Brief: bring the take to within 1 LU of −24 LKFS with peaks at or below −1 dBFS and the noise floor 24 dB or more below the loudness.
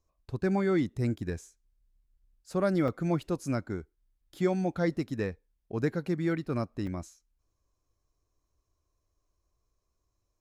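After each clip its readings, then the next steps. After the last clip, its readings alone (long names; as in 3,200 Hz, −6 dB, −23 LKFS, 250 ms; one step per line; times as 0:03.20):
number of dropouts 2; longest dropout 2.9 ms; integrated loudness −31.5 LKFS; sample peak −14.5 dBFS; target loudness −24.0 LKFS
→ repair the gap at 0:02.88/0:06.87, 2.9 ms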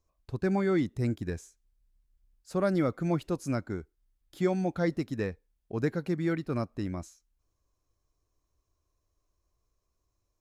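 number of dropouts 0; integrated loudness −31.5 LKFS; sample peak −14.5 dBFS; target loudness −24.0 LKFS
→ level +7.5 dB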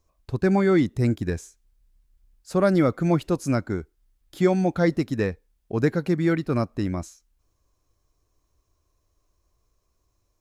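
integrated loudness −24.0 LKFS; sample peak −7.0 dBFS; background noise floor −72 dBFS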